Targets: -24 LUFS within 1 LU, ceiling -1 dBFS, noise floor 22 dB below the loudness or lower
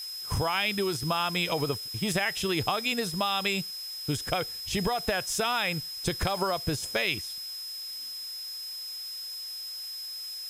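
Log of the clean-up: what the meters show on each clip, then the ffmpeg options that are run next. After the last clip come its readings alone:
steady tone 5.1 kHz; tone level -36 dBFS; noise floor -39 dBFS; noise floor target -52 dBFS; loudness -29.5 LUFS; peak level -11.0 dBFS; loudness target -24.0 LUFS
-> -af "bandreject=f=5100:w=30"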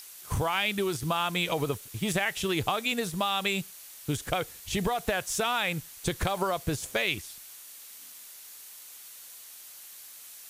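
steady tone not found; noise floor -48 dBFS; noise floor target -52 dBFS
-> -af "afftdn=nr=6:nf=-48"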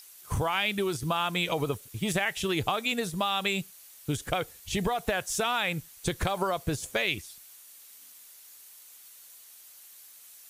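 noise floor -52 dBFS; loudness -29.5 LUFS; peak level -11.5 dBFS; loudness target -24.0 LUFS
-> -af "volume=1.88"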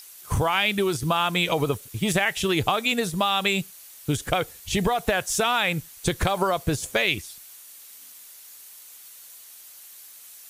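loudness -24.0 LUFS; peak level -6.0 dBFS; noise floor -46 dBFS

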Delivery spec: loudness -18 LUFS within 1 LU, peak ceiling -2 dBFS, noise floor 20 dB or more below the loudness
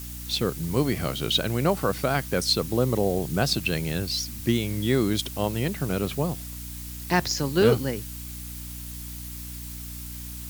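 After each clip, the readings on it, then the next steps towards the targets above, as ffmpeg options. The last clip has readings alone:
hum 60 Hz; highest harmonic 300 Hz; hum level -37 dBFS; noise floor -37 dBFS; noise floor target -47 dBFS; loudness -26.5 LUFS; peak level -5.5 dBFS; loudness target -18.0 LUFS
-> -af "bandreject=f=60:t=h:w=6,bandreject=f=120:t=h:w=6,bandreject=f=180:t=h:w=6,bandreject=f=240:t=h:w=6,bandreject=f=300:t=h:w=6"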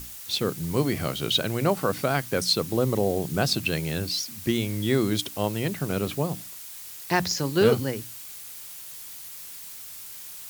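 hum not found; noise floor -41 dBFS; noise floor target -46 dBFS
-> -af "afftdn=nr=6:nf=-41"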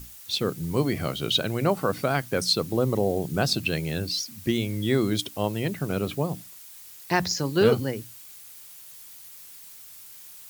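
noise floor -46 dBFS; loudness -26.0 LUFS; peak level -6.5 dBFS; loudness target -18.0 LUFS
-> -af "volume=2.51,alimiter=limit=0.794:level=0:latency=1"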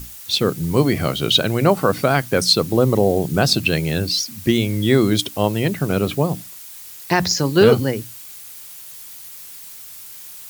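loudness -18.0 LUFS; peak level -2.0 dBFS; noise floor -38 dBFS

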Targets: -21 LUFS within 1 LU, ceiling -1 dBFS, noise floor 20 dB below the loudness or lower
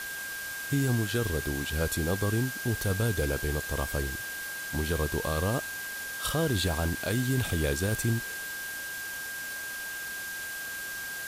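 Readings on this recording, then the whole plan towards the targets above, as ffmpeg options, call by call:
steady tone 1.6 kHz; tone level -36 dBFS; noise floor -37 dBFS; noise floor target -51 dBFS; loudness -30.5 LUFS; peak level -16.5 dBFS; loudness target -21.0 LUFS
-> -af "bandreject=f=1600:w=30"
-af "afftdn=nr=14:nf=-37"
-af "volume=2.99"

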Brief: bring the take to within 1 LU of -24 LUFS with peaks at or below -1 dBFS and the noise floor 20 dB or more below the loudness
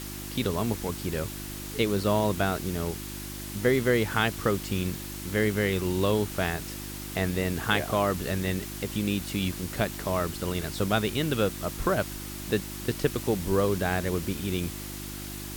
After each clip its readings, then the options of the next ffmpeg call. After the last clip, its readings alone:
hum 50 Hz; highest harmonic 350 Hz; hum level -38 dBFS; noise floor -38 dBFS; noise floor target -49 dBFS; loudness -28.5 LUFS; peak level -10.5 dBFS; loudness target -24.0 LUFS
-> -af "bandreject=f=50:t=h:w=4,bandreject=f=100:t=h:w=4,bandreject=f=150:t=h:w=4,bandreject=f=200:t=h:w=4,bandreject=f=250:t=h:w=4,bandreject=f=300:t=h:w=4,bandreject=f=350:t=h:w=4"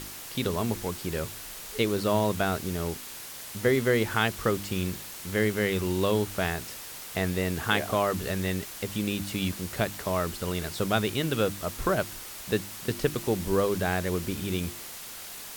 hum not found; noise floor -41 dBFS; noise floor target -49 dBFS
-> -af "afftdn=nr=8:nf=-41"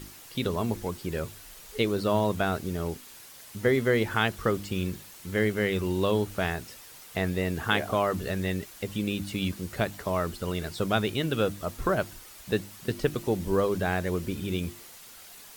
noise floor -48 dBFS; noise floor target -49 dBFS
-> -af "afftdn=nr=6:nf=-48"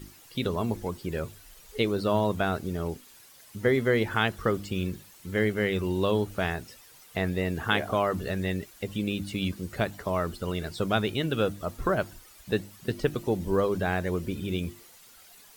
noise floor -53 dBFS; loudness -29.0 LUFS; peak level -9.5 dBFS; loudness target -24.0 LUFS
-> -af "volume=1.78"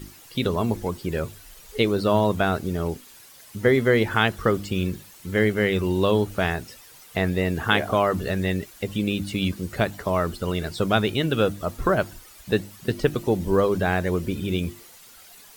loudness -24.0 LUFS; peak level -4.5 dBFS; noise floor -48 dBFS

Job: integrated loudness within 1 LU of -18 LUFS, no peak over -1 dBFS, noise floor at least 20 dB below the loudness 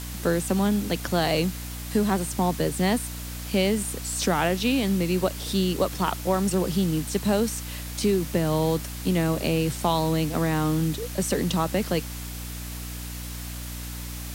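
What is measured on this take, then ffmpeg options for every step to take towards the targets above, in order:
hum 60 Hz; highest harmonic 300 Hz; hum level -34 dBFS; noise floor -35 dBFS; noise floor target -46 dBFS; loudness -26.0 LUFS; peak level -9.5 dBFS; loudness target -18.0 LUFS
-> -af "bandreject=f=60:t=h:w=4,bandreject=f=120:t=h:w=4,bandreject=f=180:t=h:w=4,bandreject=f=240:t=h:w=4,bandreject=f=300:t=h:w=4"
-af "afftdn=nr=11:nf=-35"
-af "volume=2.51"

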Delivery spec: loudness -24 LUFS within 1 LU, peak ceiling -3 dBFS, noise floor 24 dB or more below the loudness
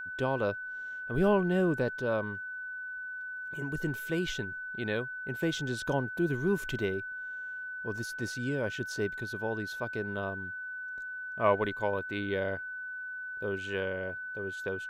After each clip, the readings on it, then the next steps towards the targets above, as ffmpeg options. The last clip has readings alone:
steady tone 1.5 kHz; tone level -37 dBFS; loudness -33.0 LUFS; peak level -13.0 dBFS; loudness target -24.0 LUFS
-> -af "bandreject=f=1500:w=30"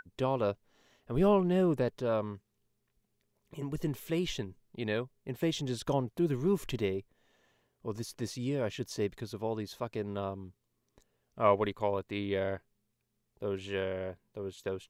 steady tone not found; loudness -33.5 LUFS; peak level -13.5 dBFS; loudness target -24.0 LUFS
-> -af "volume=2.99"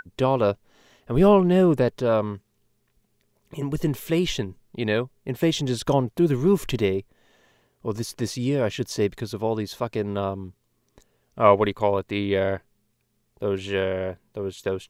loudness -24.0 LUFS; peak level -4.0 dBFS; noise floor -70 dBFS

